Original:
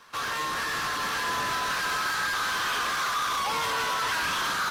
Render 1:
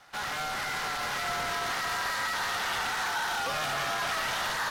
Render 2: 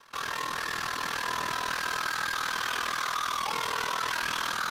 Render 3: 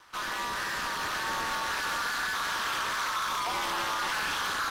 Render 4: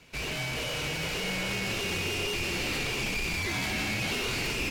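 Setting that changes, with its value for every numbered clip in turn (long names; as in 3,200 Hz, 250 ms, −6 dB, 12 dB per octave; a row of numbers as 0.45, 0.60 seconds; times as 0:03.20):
ring modulation, frequency: 310, 20, 110, 1,200 Hertz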